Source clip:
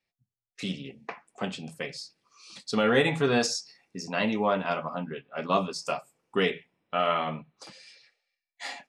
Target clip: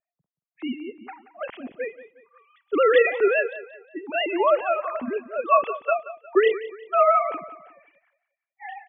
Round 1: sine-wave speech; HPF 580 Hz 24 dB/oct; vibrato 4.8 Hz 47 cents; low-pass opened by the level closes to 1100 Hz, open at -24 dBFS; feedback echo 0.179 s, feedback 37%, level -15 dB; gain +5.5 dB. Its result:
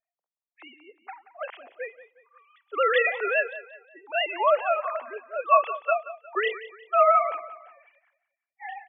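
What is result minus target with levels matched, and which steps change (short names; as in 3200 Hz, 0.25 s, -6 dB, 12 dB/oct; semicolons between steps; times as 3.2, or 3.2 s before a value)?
500 Hz band -3.0 dB
remove: HPF 580 Hz 24 dB/oct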